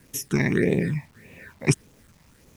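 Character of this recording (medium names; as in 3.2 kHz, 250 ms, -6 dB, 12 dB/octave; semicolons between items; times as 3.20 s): phasing stages 8, 1.7 Hz, lowest notch 410–1500 Hz; a quantiser's noise floor 10-bit, dither none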